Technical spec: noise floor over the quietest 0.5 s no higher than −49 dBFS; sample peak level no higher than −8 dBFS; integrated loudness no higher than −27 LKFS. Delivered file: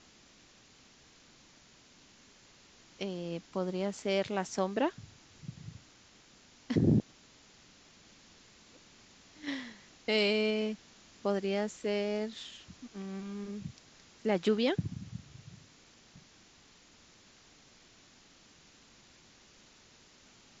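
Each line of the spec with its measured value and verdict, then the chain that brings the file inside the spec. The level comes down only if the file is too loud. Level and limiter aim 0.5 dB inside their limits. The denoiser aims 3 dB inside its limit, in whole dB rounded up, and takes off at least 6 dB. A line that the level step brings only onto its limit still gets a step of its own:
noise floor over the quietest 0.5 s −61 dBFS: in spec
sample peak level −15.0 dBFS: in spec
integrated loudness −33.5 LKFS: in spec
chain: no processing needed

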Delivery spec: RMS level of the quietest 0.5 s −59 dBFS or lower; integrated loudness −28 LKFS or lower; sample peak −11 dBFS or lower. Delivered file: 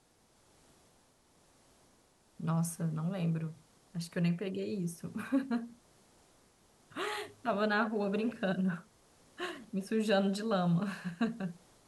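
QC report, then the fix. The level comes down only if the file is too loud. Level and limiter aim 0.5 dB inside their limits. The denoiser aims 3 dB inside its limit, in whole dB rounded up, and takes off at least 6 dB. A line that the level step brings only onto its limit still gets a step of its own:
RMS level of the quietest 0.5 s −68 dBFS: in spec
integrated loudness −35.0 LKFS: in spec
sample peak −17.5 dBFS: in spec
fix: no processing needed

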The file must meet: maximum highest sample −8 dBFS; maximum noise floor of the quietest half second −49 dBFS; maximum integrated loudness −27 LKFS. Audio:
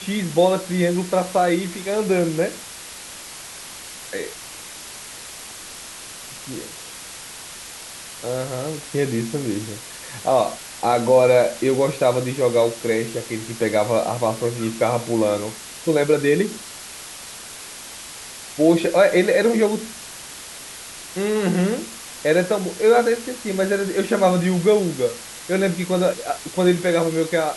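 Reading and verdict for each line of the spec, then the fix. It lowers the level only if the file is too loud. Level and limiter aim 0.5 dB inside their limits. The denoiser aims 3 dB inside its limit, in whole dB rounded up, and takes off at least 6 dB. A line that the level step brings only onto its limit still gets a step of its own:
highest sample −4.5 dBFS: out of spec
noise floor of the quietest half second −37 dBFS: out of spec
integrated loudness −20.5 LKFS: out of spec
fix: broadband denoise 8 dB, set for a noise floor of −37 dBFS
level −7 dB

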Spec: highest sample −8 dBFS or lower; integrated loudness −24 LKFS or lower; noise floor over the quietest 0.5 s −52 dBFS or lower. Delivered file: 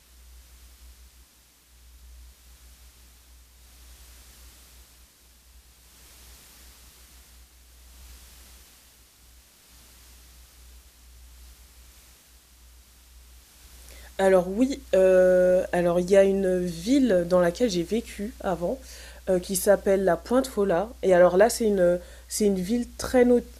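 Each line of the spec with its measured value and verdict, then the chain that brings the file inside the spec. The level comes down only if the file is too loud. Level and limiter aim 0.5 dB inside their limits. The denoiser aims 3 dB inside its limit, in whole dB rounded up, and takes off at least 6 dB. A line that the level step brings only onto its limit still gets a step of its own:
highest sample −7.0 dBFS: out of spec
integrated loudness −23.0 LKFS: out of spec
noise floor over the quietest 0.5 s −58 dBFS: in spec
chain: level −1.5 dB

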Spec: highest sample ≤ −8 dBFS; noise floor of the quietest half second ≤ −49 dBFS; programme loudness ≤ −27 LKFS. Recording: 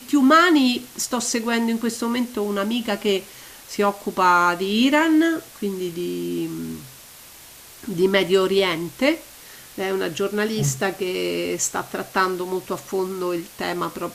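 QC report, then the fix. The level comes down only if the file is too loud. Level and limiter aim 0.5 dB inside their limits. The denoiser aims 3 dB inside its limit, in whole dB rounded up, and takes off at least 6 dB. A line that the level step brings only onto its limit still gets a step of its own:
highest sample −4.5 dBFS: out of spec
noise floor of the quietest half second −44 dBFS: out of spec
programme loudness −21.5 LKFS: out of spec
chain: level −6 dB

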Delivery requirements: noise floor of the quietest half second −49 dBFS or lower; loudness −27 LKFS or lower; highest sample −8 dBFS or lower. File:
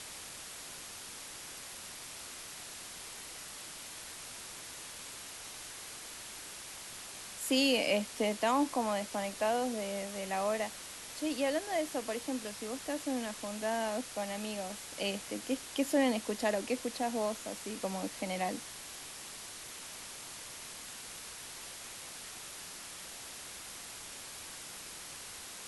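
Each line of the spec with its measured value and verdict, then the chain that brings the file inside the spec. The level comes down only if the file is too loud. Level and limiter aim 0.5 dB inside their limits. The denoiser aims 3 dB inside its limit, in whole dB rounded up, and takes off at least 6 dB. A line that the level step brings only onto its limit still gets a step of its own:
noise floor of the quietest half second −47 dBFS: out of spec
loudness −37.0 LKFS: in spec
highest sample −17.5 dBFS: in spec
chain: broadband denoise 6 dB, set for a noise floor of −47 dBFS

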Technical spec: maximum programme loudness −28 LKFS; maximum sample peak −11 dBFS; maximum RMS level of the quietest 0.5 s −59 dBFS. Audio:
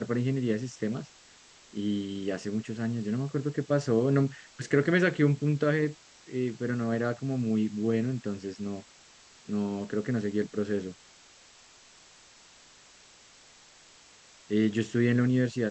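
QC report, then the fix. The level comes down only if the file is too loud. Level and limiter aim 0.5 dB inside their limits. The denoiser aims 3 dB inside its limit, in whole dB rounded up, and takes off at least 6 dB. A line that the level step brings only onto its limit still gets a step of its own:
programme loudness −29.5 LKFS: in spec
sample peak −10.0 dBFS: out of spec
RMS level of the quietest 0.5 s −56 dBFS: out of spec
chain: broadband denoise 6 dB, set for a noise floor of −56 dBFS
brickwall limiter −11.5 dBFS

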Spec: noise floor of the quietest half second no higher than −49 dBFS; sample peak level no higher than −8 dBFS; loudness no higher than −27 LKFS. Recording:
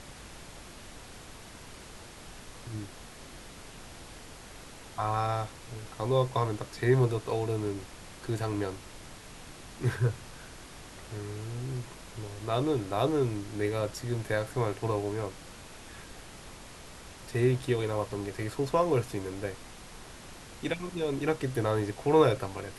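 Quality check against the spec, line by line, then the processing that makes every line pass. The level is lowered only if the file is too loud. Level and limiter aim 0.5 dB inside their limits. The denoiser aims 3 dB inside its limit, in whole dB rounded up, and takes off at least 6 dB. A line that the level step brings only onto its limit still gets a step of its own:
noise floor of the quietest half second −47 dBFS: out of spec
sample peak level −10.5 dBFS: in spec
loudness −31.0 LKFS: in spec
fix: broadband denoise 6 dB, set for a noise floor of −47 dBFS

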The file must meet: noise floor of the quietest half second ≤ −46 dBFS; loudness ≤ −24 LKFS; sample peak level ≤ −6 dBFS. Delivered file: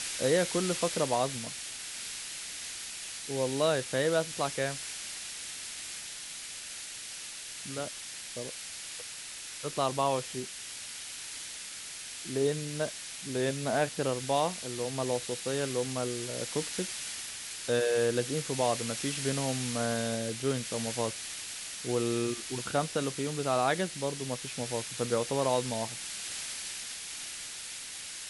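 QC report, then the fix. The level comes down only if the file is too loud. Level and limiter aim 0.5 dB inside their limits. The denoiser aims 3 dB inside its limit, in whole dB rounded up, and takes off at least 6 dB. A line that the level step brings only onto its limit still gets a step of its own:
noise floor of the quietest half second −43 dBFS: out of spec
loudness −32.5 LKFS: in spec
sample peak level −14.0 dBFS: in spec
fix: broadband denoise 6 dB, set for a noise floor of −43 dBFS

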